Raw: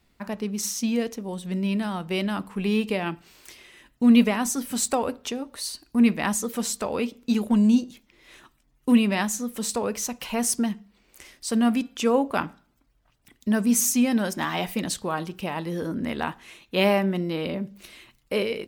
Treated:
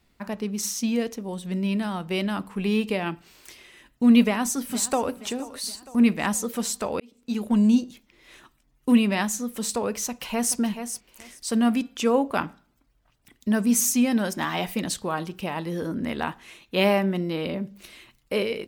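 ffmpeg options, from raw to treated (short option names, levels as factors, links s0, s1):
-filter_complex "[0:a]asplit=2[s0][s1];[s1]afade=t=in:st=4.22:d=0.01,afade=t=out:st=5.11:d=0.01,aecho=0:1:470|940|1410|1880|2350:0.141254|0.0776896|0.0427293|0.0235011|0.0129256[s2];[s0][s2]amix=inputs=2:normalize=0,asplit=2[s3][s4];[s4]afade=t=in:st=10.06:d=0.01,afade=t=out:st=10.57:d=0.01,aecho=0:1:430|860:0.375837|0.0563756[s5];[s3][s5]amix=inputs=2:normalize=0,asplit=2[s6][s7];[s6]atrim=end=7,asetpts=PTS-STARTPTS,afade=t=out:st=6.996:d=0.004:c=hsin[s8];[s7]atrim=start=7,asetpts=PTS-STARTPTS,afade=t=in:d=0.59[s9];[s8][s9]concat=n=2:v=0:a=1"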